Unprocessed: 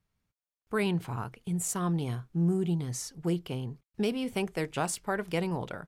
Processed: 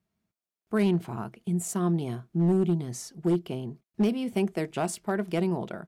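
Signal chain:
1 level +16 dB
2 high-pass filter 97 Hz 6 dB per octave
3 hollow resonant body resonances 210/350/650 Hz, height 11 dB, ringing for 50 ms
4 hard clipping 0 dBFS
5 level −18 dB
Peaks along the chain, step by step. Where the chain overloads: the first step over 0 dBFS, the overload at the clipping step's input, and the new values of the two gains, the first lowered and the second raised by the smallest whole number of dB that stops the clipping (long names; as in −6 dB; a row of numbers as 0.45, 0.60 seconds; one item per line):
−1.5, −1.0, +4.5, 0.0, −18.0 dBFS
step 3, 4.5 dB
step 1 +11 dB, step 5 −13 dB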